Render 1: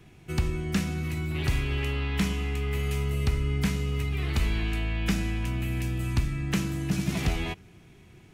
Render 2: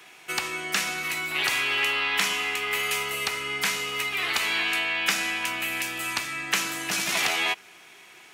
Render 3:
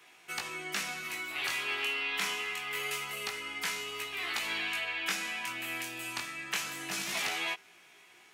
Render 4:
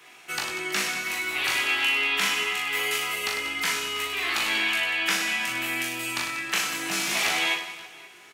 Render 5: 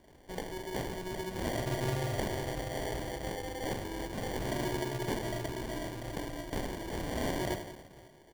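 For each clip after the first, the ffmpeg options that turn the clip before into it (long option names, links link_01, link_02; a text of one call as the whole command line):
ffmpeg -i in.wav -filter_complex "[0:a]highpass=880,asplit=2[link_01][link_02];[link_02]alimiter=level_in=3dB:limit=-24dB:level=0:latency=1:release=144,volume=-3dB,volume=-0.5dB[link_03];[link_01][link_03]amix=inputs=2:normalize=0,volume=7dB" out.wav
ffmpeg -i in.wav -af "flanger=delay=17:depth=7.6:speed=0.25,volume=-5.5dB" out.wav
ffmpeg -i in.wav -af "aecho=1:1:40|100|190|325|527.5:0.631|0.398|0.251|0.158|0.1,volume=6.5dB" out.wav
ffmpeg -i in.wav -af "acrusher=samples=34:mix=1:aa=0.000001,volume=-8.5dB" out.wav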